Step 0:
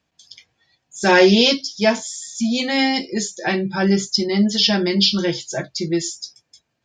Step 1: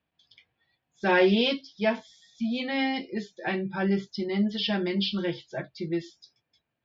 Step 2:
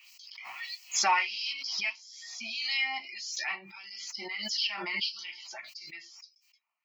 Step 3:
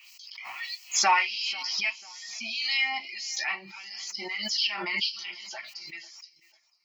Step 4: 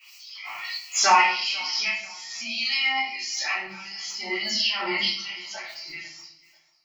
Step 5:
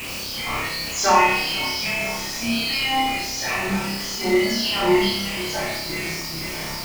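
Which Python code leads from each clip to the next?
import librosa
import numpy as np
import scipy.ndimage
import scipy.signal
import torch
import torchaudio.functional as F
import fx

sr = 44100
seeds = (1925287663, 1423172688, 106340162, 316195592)

y1 = scipy.signal.sosfilt(scipy.signal.butter(4, 3600.0, 'lowpass', fs=sr, output='sos'), x)
y1 = y1 * librosa.db_to_amplitude(-8.5)
y2 = fx.fixed_phaser(y1, sr, hz=2400.0, stages=8)
y2 = fx.filter_lfo_highpass(y2, sr, shape='sine', hz=1.6, low_hz=980.0, high_hz=5300.0, q=1.8)
y2 = fx.pre_swell(y2, sr, db_per_s=32.0)
y3 = fx.echo_feedback(y2, sr, ms=493, feedback_pct=36, wet_db=-22.5)
y3 = y3 * librosa.db_to_amplitude(3.5)
y4 = fx.room_shoebox(y3, sr, seeds[0], volume_m3=90.0, walls='mixed', distance_m=2.9)
y4 = y4 * librosa.db_to_amplitude(-7.0)
y5 = y4 + 0.5 * 10.0 ** (-21.0 / 20.0) * np.sign(y4)
y5 = fx.tilt_shelf(y5, sr, db=8.0, hz=770.0)
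y5 = fx.room_flutter(y5, sr, wall_m=5.2, rt60_s=0.6)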